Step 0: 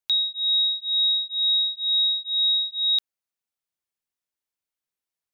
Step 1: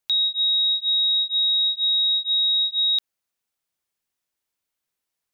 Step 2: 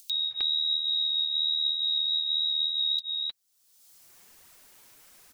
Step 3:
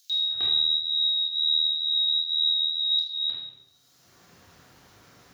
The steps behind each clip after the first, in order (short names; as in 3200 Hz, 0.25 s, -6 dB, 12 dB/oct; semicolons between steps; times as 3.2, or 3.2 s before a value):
limiter -23.5 dBFS, peak gain reduction 6.5 dB; gain +6.5 dB
upward compressor, threshold -26 dBFS; flange 1.2 Hz, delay 0.5 ms, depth 8.5 ms, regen +16%; bands offset in time highs, lows 0.31 s, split 3500 Hz
reverb RT60 1.0 s, pre-delay 3 ms, DRR -6 dB; gain -9 dB